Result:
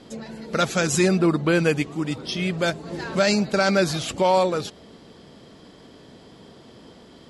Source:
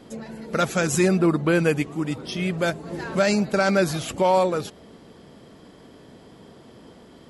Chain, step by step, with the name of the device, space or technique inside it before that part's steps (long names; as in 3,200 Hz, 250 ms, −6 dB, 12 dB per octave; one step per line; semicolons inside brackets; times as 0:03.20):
low-pass filter 8,800 Hz 12 dB per octave
presence and air boost (parametric band 4,200 Hz +5 dB 1.1 octaves; high-shelf EQ 9,700 Hz +5 dB)